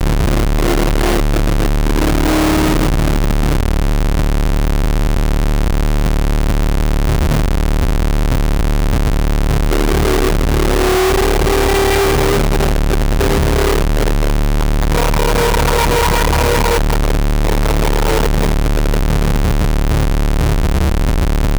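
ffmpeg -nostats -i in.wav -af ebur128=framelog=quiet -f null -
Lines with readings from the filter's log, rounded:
Integrated loudness:
  I:         -15.4 LUFS
  Threshold: -25.4 LUFS
Loudness range:
  LRA:         2.8 LU
  Threshold: -35.3 LUFS
  LRA low:   -16.7 LUFS
  LRA high:  -13.9 LUFS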